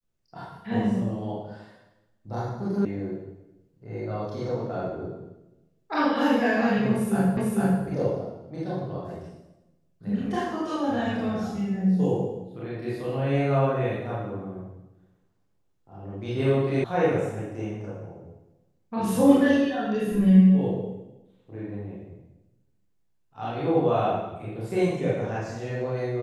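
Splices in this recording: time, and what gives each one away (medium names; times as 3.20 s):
2.85 s: sound stops dead
7.37 s: repeat of the last 0.45 s
16.84 s: sound stops dead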